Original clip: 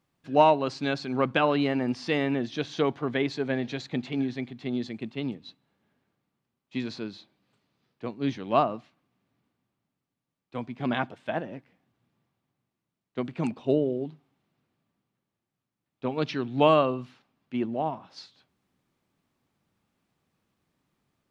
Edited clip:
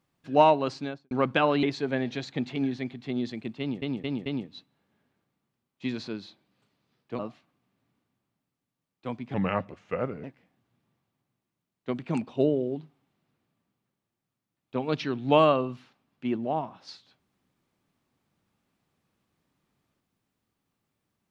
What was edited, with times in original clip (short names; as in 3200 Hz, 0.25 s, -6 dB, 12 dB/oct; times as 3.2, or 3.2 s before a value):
0.67–1.11 studio fade out
1.63–3.2 cut
5.17 stutter 0.22 s, 4 plays
8.1–8.68 cut
10.83–11.53 speed 78%